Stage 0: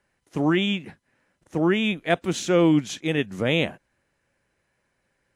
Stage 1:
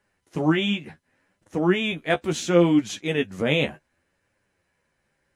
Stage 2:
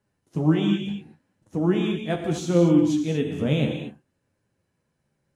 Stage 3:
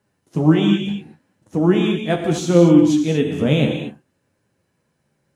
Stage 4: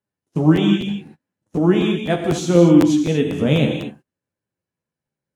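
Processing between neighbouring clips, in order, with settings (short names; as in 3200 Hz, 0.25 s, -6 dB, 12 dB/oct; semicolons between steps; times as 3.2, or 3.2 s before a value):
flange 0.69 Hz, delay 9.5 ms, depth 4.6 ms, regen +19%; gain +3.5 dB
graphic EQ 125/250/2000 Hz +10/+5/-7 dB; non-linear reverb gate 0.26 s flat, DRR 3.5 dB; gain -5.5 dB
low shelf 67 Hz -10 dB; gain +7 dB
gate -41 dBFS, range -18 dB; crackling interface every 0.25 s, samples 512, repeat, from 0.3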